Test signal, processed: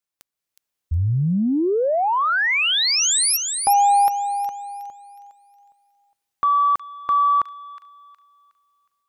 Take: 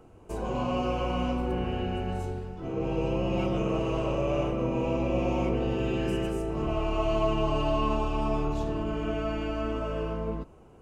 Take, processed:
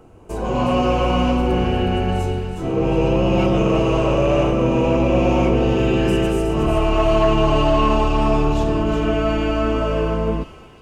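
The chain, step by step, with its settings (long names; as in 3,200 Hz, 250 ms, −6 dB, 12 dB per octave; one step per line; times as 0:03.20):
soft clipping −19 dBFS
automatic gain control gain up to 5.5 dB
on a send: delay with a high-pass on its return 365 ms, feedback 34%, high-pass 2,500 Hz, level −6 dB
on the sum: level +6.5 dB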